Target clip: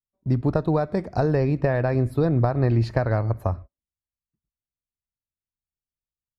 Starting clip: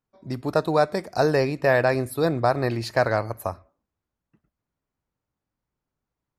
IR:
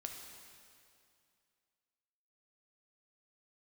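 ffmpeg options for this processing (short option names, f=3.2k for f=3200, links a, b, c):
-af "agate=range=-28dB:threshold=-43dB:ratio=16:detection=peak,acompressor=threshold=-22dB:ratio=6,aemphasis=mode=reproduction:type=riaa"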